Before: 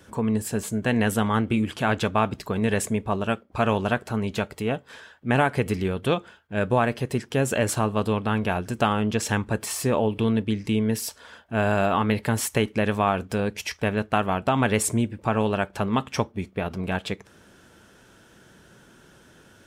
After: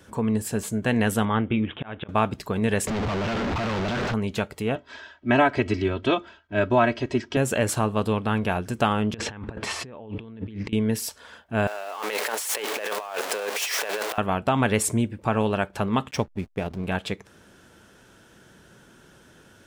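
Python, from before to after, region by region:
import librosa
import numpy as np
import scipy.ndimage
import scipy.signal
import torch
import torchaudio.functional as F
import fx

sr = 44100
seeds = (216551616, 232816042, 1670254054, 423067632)

y = fx.chain(x, sr, fx.cheby1_lowpass(hz=3700.0, order=8),
    fx.auto_swell(attack_ms=354.0), at=(1.25, 2.09))
y = fx.chain(y, sr, fx.clip_1bit(),
    fx.air_absorb(metres=160.0), at=(2.87, 4.14))
y = fx.chain(y, sr, fx.lowpass(hz=6000.0, slope=24),
    fx.comb(ms=3.1, depth=0.87), at=(4.75, 7.37))
y = fx.chain(y, sr, fx.lowpass(hz=3200.0, slope=12),
    fx.over_compress(threshold_db=-36.0, ratio=-1.0), at=(9.14, 10.73))
y = fx.chain(y, sr, fx.zero_step(step_db=-24.0),
    fx.highpass(hz=450.0, slope=24),
    fx.over_compress(threshold_db=-30.0, ratio=-1.0), at=(11.67, 14.18))
y = fx.chain(y, sr, fx.dynamic_eq(hz=1300.0, q=1.5, threshold_db=-44.0, ratio=4.0, max_db=-6),
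    fx.backlash(play_db=-37.5), at=(16.11, 16.87))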